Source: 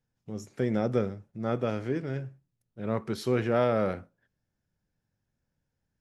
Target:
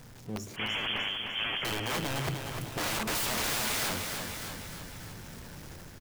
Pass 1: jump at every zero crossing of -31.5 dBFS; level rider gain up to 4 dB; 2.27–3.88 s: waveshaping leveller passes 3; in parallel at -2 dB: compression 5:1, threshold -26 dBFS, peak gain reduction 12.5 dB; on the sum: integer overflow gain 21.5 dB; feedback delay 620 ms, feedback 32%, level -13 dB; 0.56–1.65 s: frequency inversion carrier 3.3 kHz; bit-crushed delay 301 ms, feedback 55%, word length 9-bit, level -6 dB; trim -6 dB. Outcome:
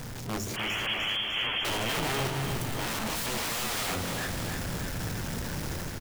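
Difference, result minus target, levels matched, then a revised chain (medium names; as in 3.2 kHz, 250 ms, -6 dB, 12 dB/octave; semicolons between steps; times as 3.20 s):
jump at every zero crossing: distortion +10 dB; compression: peak gain reduction -5 dB
jump at every zero crossing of -43 dBFS; level rider gain up to 4 dB; 2.27–3.88 s: waveshaping leveller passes 3; in parallel at -2 dB: compression 5:1, threshold -33 dBFS, peak gain reduction 18 dB; on the sum: integer overflow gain 21.5 dB; feedback delay 620 ms, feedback 32%, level -13 dB; 0.56–1.65 s: frequency inversion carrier 3.3 kHz; bit-crushed delay 301 ms, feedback 55%, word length 9-bit, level -6 dB; trim -6 dB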